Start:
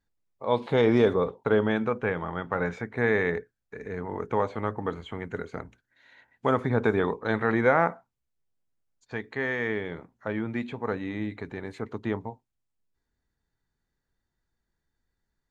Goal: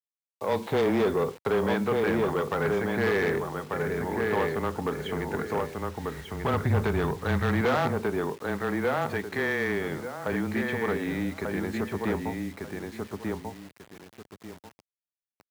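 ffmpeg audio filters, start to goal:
-filter_complex "[0:a]asplit=2[a][b];[b]acompressor=threshold=-37dB:ratio=5,volume=2.5dB[c];[a][c]amix=inputs=2:normalize=0,afreqshift=-18,asplit=2[d][e];[e]adelay=1191,lowpass=f=3.1k:p=1,volume=-4dB,asplit=2[f][g];[g]adelay=1191,lowpass=f=3.1k:p=1,volume=0.23,asplit=2[h][i];[i]adelay=1191,lowpass=f=3.1k:p=1,volume=0.23[j];[f][h][j]amix=inputs=3:normalize=0[k];[d][k]amix=inputs=2:normalize=0,asoftclip=type=tanh:threshold=-19.5dB,acrusher=bits=7:mix=0:aa=0.000001,asettb=1/sr,asplit=3[l][m][n];[l]atrim=end=5.574[o];[m]atrim=start=5.57:end=7.61,asetpts=PTS-STARTPTS,afade=t=in:d=0.004:c=qsin,afade=t=out:st=2.036:d=0.004:c=qsin,asubboost=boost=9:cutoff=130[p];[n]atrim=start=7.606[q];[o][p]acrossfade=d=0.004:c1=hsin:c2=qsin[r];[r][q]acrossfade=d=0.004:c1=qsin:c2=hsin,highpass=89"

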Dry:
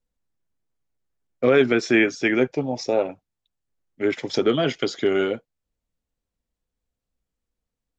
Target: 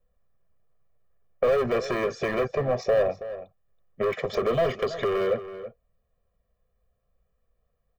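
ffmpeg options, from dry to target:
-filter_complex "[0:a]acrossover=split=780[a][b];[b]alimiter=limit=-18dB:level=0:latency=1:release=95[c];[a][c]amix=inputs=2:normalize=0,equalizer=f=850:w=0.45:g=5,volume=21.5dB,asoftclip=hard,volume=-21.5dB,acompressor=threshold=-29dB:ratio=6,equalizer=f=6.3k:w=0.44:g=-15,aecho=1:1:1.7:0.99,asplit=2[d][e];[e]adelay=326.5,volume=-13dB,highshelf=f=4k:g=-7.35[f];[d][f]amix=inputs=2:normalize=0,volume=5dB"

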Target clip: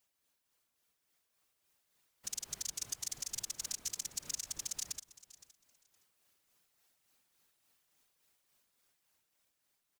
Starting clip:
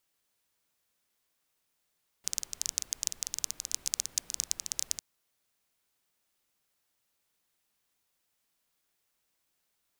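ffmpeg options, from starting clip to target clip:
-af "tremolo=f=3.5:d=0.44,alimiter=limit=-19dB:level=0:latency=1:release=122,afftfilt=real='hypot(re,im)*cos(2*PI*random(0))':imag='hypot(re,im)*sin(2*PI*random(1))':win_size=512:overlap=0.75,dynaudnorm=f=490:g=7:m=5.5dB,aecho=1:1:516|1032:0.119|0.0202,volume=5.5dB"

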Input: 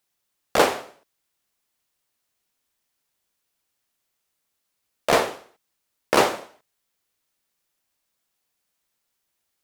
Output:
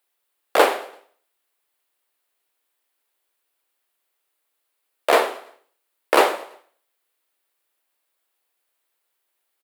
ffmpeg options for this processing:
-filter_complex "[0:a]highpass=f=330:w=0.5412,highpass=f=330:w=1.3066,equalizer=f=6k:w=1.6:g=-9,asplit=2[a][b];[b]aecho=0:1:112|224|336:0.0891|0.0374|0.0157[c];[a][c]amix=inputs=2:normalize=0,volume=3dB"

